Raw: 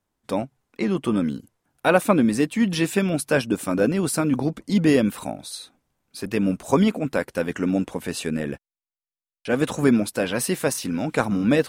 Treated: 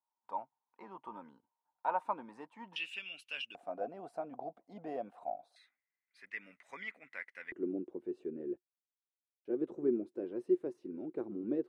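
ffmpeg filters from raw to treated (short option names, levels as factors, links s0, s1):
-af "asetnsamples=n=441:p=0,asendcmd='2.76 bandpass f 2800;3.55 bandpass f 710;5.56 bandpass f 2000;7.52 bandpass f 360',bandpass=f=920:t=q:w=13:csg=0"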